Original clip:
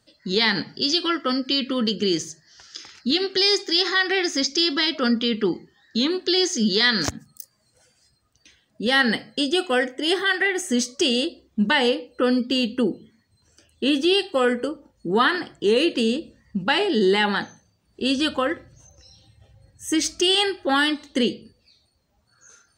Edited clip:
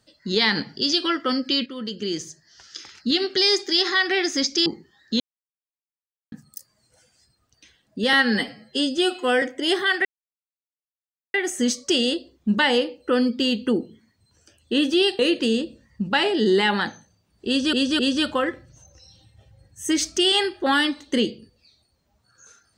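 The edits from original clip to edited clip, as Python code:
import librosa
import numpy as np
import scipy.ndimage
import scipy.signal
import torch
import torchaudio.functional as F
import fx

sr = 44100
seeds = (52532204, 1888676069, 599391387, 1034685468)

y = fx.edit(x, sr, fx.fade_in_from(start_s=1.66, length_s=1.11, floor_db=-12.0),
    fx.cut(start_s=4.66, length_s=0.83),
    fx.silence(start_s=6.03, length_s=1.12),
    fx.stretch_span(start_s=8.96, length_s=0.86, factor=1.5),
    fx.insert_silence(at_s=10.45, length_s=1.29),
    fx.cut(start_s=14.3, length_s=1.44),
    fx.repeat(start_s=18.02, length_s=0.26, count=3), tone=tone)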